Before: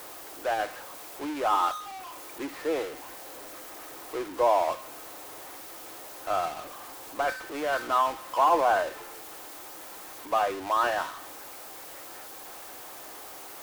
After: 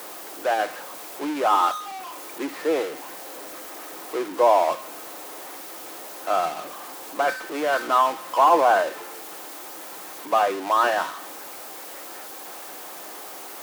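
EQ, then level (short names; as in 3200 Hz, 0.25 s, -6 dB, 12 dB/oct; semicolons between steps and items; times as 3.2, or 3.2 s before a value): elliptic high-pass 160 Hz, stop band 40 dB; +6.0 dB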